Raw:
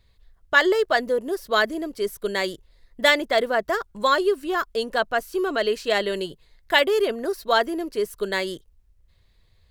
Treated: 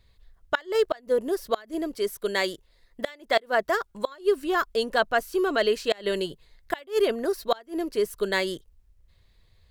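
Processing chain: 1.95–4.07 low shelf 200 Hz -7 dB; flipped gate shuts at -10 dBFS, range -27 dB

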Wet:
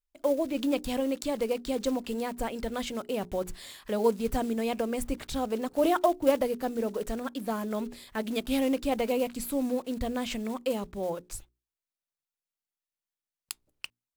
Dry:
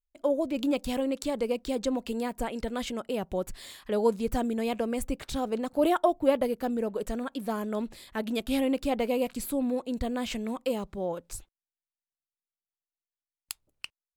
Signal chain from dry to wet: block floating point 5-bit; notches 60/120/180/240/300/360/420 Hz

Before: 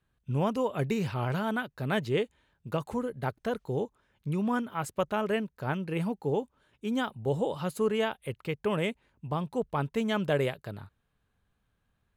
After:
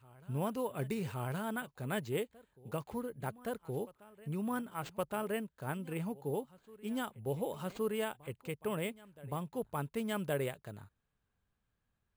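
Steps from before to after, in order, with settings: vibrato 0.95 Hz 27 cents; careless resampling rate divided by 4×, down none, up hold; reverse echo 1.119 s -21 dB; gain -7.5 dB

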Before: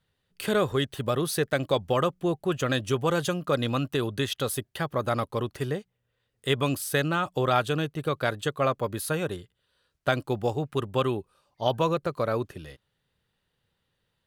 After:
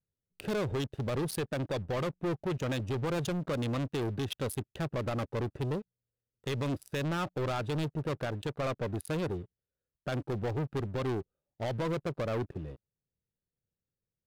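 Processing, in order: Wiener smoothing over 41 samples; limiter -20 dBFS, peak gain reduction 11 dB; sample leveller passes 3; gain -7.5 dB

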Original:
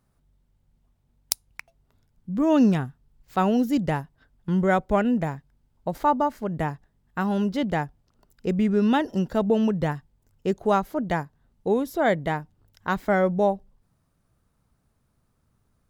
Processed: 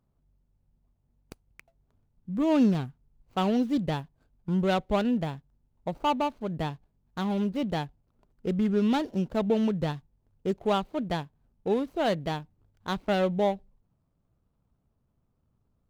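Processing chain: median filter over 25 samples; dynamic EQ 3700 Hz, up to +6 dB, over -48 dBFS, Q 1.3; gain -3.5 dB

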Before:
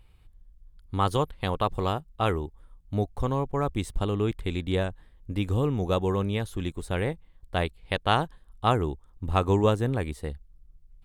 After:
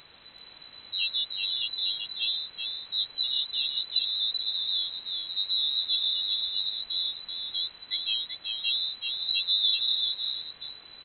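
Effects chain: high shelf 2700 Hz +6.5 dB; loudest bins only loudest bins 8; in parallel at -8 dB: requantised 6-bit, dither triangular; on the sum: inverted band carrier 4000 Hz; echo 0.384 s -4.5 dB; gain -6 dB

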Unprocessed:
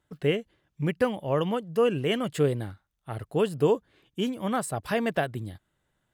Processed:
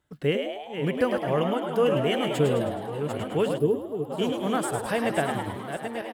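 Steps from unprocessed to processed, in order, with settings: regenerating reverse delay 0.547 s, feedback 43%, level -7.5 dB; de-hum 112.8 Hz, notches 2; on a send: frequency-shifting echo 0.105 s, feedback 56%, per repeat +97 Hz, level -6 dB; on the sum: spectral gain 3.58–4.1, 470–10000 Hz -13 dB

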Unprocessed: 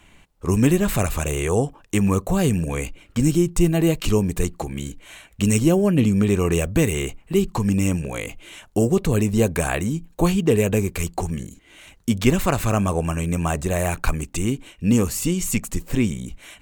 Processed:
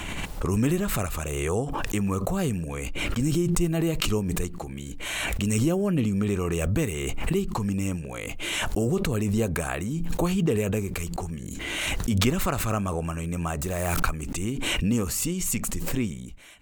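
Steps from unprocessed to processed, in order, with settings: 13.61–14.03 switching spikes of -26 dBFS; dynamic EQ 1300 Hz, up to +6 dB, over -49 dBFS, Q 6.4; backwards sustainer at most 21 dB/s; gain -7.5 dB

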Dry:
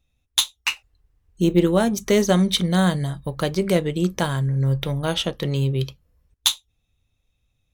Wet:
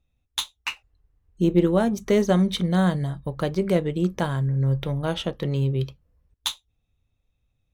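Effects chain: high shelf 2700 Hz -10 dB; gain -1.5 dB

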